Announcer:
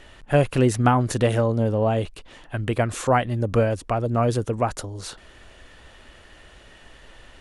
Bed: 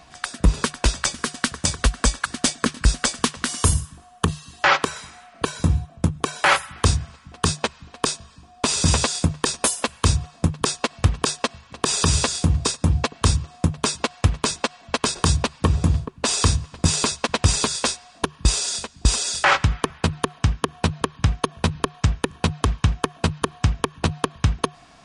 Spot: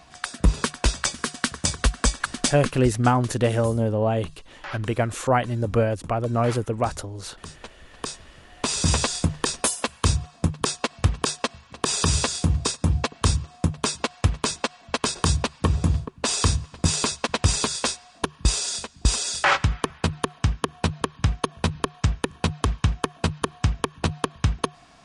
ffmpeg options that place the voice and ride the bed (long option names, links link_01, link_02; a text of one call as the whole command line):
ffmpeg -i stem1.wav -i stem2.wav -filter_complex "[0:a]adelay=2200,volume=-1dB[link_01];[1:a]volume=15.5dB,afade=type=out:start_time=2.42:duration=0.49:silence=0.125893,afade=type=in:start_time=7.58:duration=1.35:silence=0.133352[link_02];[link_01][link_02]amix=inputs=2:normalize=0" out.wav